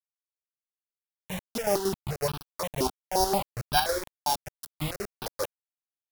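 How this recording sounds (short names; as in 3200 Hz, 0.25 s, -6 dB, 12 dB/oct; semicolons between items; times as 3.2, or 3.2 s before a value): a buzz of ramps at a fixed pitch in blocks of 8 samples; chopped level 5.4 Hz, depth 60%, duty 50%; a quantiser's noise floor 6-bit, dither none; notches that jump at a steady rate 5.7 Hz 510–2000 Hz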